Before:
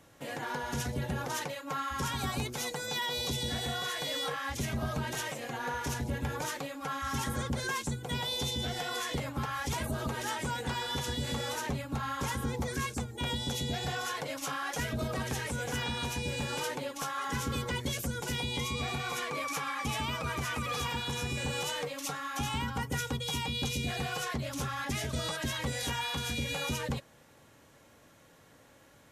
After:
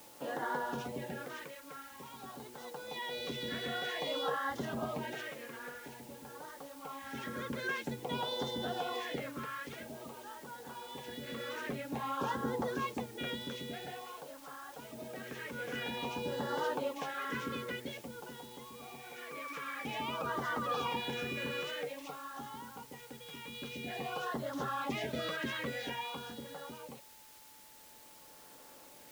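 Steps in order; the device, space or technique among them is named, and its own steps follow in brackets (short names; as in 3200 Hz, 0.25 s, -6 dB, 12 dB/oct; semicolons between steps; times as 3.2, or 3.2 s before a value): shortwave radio (BPF 260–2500 Hz; tremolo 0.24 Hz, depth 80%; LFO notch sine 0.5 Hz 780–2500 Hz; whine 870 Hz -66 dBFS; white noise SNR 17 dB); gain +3 dB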